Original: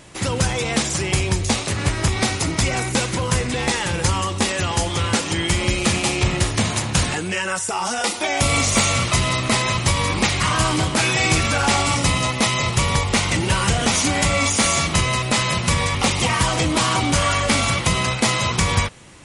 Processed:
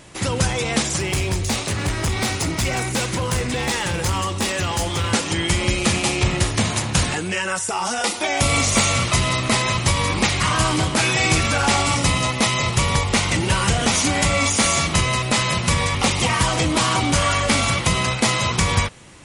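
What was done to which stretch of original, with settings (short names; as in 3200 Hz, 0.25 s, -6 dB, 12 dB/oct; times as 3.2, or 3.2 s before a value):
0.99–5.12 overloaded stage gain 17 dB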